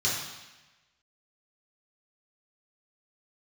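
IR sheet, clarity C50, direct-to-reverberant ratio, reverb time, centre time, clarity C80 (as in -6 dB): 1.5 dB, -7.0 dB, 1.1 s, 63 ms, 4.0 dB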